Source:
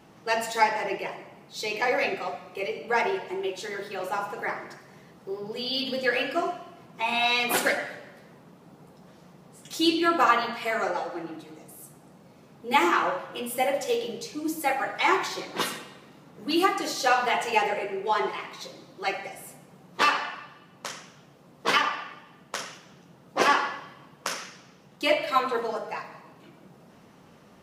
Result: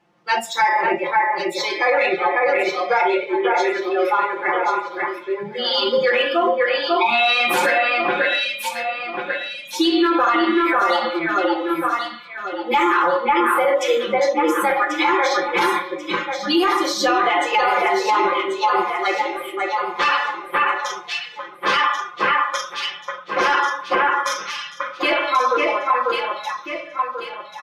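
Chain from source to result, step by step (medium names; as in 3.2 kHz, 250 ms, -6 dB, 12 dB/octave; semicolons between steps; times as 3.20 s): spectral noise reduction 19 dB; overdrive pedal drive 8 dB, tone 2.4 kHz, clips at -8.5 dBFS; comb 5.7 ms, depth 89%; on a send: echo whose repeats swap between lows and highs 544 ms, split 2.5 kHz, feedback 61%, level -3 dB; on the sum: loudness maximiser +16 dB; trim -8 dB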